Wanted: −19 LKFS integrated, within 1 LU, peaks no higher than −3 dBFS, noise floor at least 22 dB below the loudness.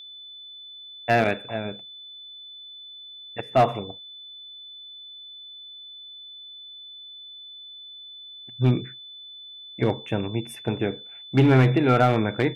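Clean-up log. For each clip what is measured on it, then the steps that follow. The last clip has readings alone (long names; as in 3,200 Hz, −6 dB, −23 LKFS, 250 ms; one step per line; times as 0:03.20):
share of clipped samples 0.4%; peaks flattened at −11.0 dBFS; interfering tone 3,500 Hz; level of the tone −40 dBFS; integrated loudness −23.0 LKFS; sample peak −11.0 dBFS; target loudness −19.0 LKFS
→ clipped peaks rebuilt −11 dBFS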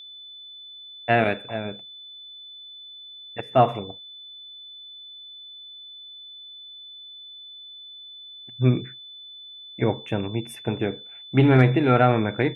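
share of clipped samples 0.0%; interfering tone 3,500 Hz; level of the tone −40 dBFS
→ notch filter 3,500 Hz, Q 30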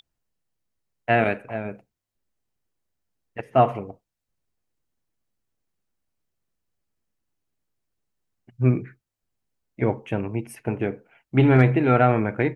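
interfering tone none found; integrated loudness −22.5 LKFS; sample peak −4.0 dBFS; target loudness −19.0 LKFS
→ level +3.5 dB
brickwall limiter −3 dBFS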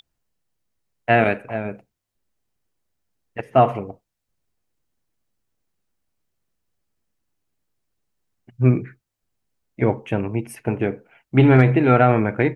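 integrated loudness −19.0 LKFS; sample peak −3.0 dBFS; background noise floor −81 dBFS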